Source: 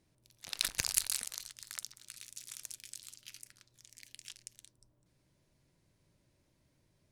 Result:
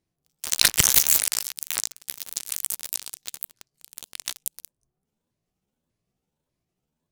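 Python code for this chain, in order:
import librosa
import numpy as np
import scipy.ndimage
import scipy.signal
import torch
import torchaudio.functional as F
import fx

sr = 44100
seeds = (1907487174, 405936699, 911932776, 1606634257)

y = fx.pitch_ramps(x, sr, semitones=9.5, every_ms=590)
y = fx.leveller(y, sr, passes=5)
y = F.gain(torch.from_numpy(y), 2.5).numpy()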